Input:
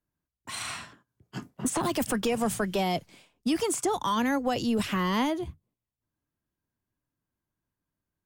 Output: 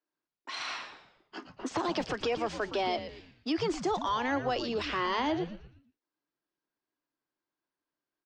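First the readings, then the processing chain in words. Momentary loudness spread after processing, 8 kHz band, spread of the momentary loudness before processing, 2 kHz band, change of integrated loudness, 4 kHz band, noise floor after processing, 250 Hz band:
17 LU, -14.5 dB, 13 LU, -1.0 dB, -4.0 dB, -1.5 dB, under -85 dBFS, -6.5 dB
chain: elliptic band-pass 310–5200 Hz, stop band 40 dB; peak limiter -22 dBFS, peak gain reduction 4.5 dB; on a send: frequency-shifting echo 116 ms, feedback 39%, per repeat -150 Hz, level -10.5 dB

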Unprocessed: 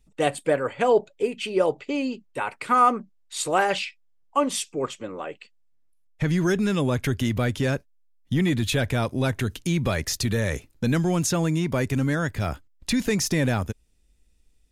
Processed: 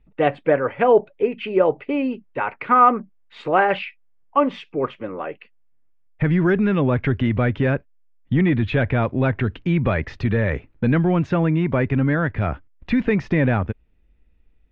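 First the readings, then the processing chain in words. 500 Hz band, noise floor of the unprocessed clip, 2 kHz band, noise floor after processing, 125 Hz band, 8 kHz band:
+4.5 dB, -61 dBFS, +4.0 dB, -57 dBFS, +4.5 dB, under -30 dB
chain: low-pass 2.5 kHz 24 dB/octave; trim +4.5 dB

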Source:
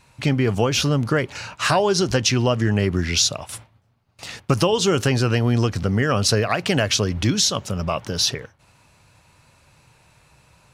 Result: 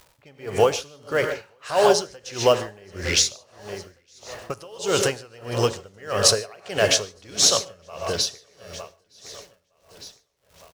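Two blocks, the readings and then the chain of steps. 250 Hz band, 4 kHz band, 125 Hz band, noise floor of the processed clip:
-12.0 dB, -1.0 dB, -13.5 dB, -65 dBFS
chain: level-controlled noise filter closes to 800 Hz, open at -17.5 dBFS; graphic EQ 125/250/500/8000 Hz -9/-10/+6/+5 dB; crackle 390 per s -40 dBFS; feedback comb 140 Hz, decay 1.6 s, mix 50%; in parallel at -5.5 dB: short-mantissa float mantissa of 2-bit; on the sum: feedback delay 911 ms, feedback 39%, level -15 dB; gated-style reverb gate 170 ms rising, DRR 7.5 dB; logarithmic tremolo 1.6 Hz, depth 28 dB; trim +4 dB

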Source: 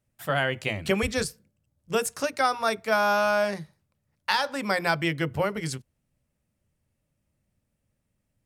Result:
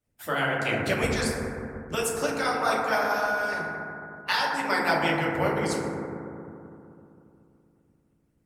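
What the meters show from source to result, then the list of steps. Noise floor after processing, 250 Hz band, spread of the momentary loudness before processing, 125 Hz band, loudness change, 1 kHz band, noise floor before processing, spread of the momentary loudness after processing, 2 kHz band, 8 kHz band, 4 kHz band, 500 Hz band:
-69 dBFS, +1.0 dB, 10 LU, 0.0 dB, -0.5 dB, +0.5 dB, -78 dBFS, 13 LU, +1.5 dB, +0.5 dB, -0.5 dB, -0.5 dB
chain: FDN reverb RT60 2.8 s, low-frequency decay 1.35×, high-frequency decay 0.25×, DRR -6.5 dB; harmonic-percussive split harmonic -13 dB

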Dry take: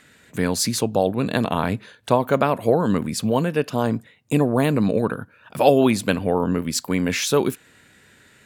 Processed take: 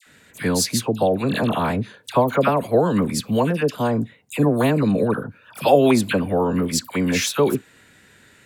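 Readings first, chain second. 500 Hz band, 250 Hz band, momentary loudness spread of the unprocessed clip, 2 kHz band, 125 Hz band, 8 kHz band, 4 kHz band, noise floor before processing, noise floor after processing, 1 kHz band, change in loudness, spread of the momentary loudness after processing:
+1.0 dB, +1.0 dB, 8 LU, +1.0 dB, +1.0 dB, +1.0 dB, +1.0 dB, -54 dBFS, -53 dBFS, +1.0 dB, +1.0 dB, 7 LU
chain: phase dispersion lows, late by 68 ms, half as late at 1.3 kHz; trim +1 dB

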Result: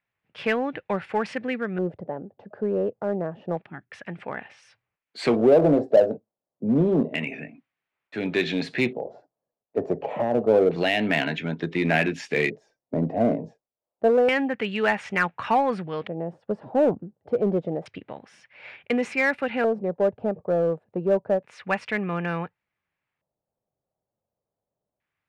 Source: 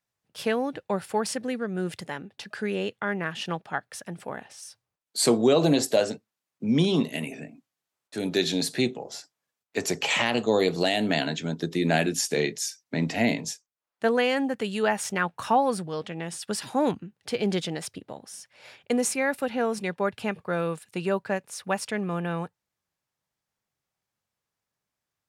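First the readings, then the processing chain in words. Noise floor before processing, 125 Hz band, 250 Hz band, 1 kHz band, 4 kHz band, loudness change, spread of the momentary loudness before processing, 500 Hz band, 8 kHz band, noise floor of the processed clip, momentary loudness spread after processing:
under -85 dBFS, +0.5 dB, +1.0 dB, +1.0 dB, -5.5 dB, +2.0 dB, 15 LU, +4.0 dB, under -15 dB, under -85 dBFS, 16 LU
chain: time-frequency box 3.66–3.92 s, 390–9100 Hz -17 dB; LFO low-pass square 0.28 Hz 610–2300 Hz; in parallel at -6 dB: hard clipper -21 dBFS, distortion -7 dB; on the sum: trim -2.5 dB

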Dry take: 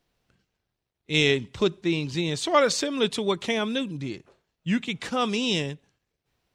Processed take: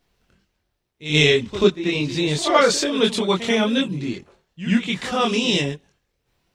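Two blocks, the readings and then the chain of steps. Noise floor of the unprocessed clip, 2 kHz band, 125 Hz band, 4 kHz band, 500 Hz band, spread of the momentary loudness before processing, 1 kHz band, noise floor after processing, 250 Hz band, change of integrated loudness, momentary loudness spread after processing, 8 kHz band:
-82 dBFS, +6.0 dB, +6.0 dB, +6.0 dB, +5.5 dB, 13 LU, +5.0 dB, -74 dBFS, +6.0 dB, +5.5 dB, 12 LU, +5.5 dB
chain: reverse echo 86 ms -11.5 dB; chorus voices 6, 1.1 Hz, delay 24 ms, depth 3 ms; trim +8.5 dB

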